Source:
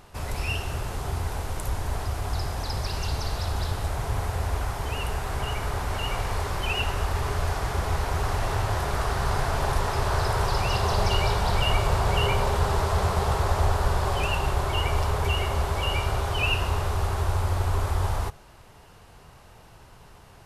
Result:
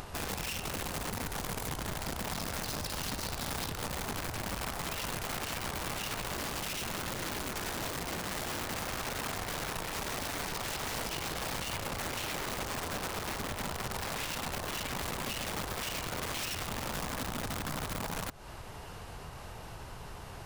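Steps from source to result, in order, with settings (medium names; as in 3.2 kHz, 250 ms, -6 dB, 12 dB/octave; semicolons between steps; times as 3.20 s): compression 16:1, threshold -32 dBFS, peak gain reduction 16 dB; overload inside the chain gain 31.5 dB; 6.33–8.66 s: bass shelf 130 Hz +8 dB; integer overflow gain 32 dB; upward compressor, threshold -37 dBFS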